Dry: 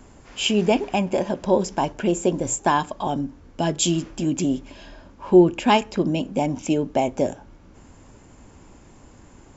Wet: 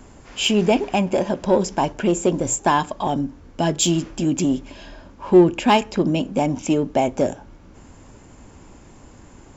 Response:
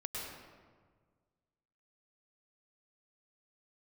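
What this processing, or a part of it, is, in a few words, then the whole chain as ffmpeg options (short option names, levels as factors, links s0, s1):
parallel distortion: -filter_complex "[0:a]asplit=2[s0][s1];[s1]asoftclip=type=hard:threshold=0.112,volume=0.398[s2];[s0][s2]amix=inputs=2:normalize=0"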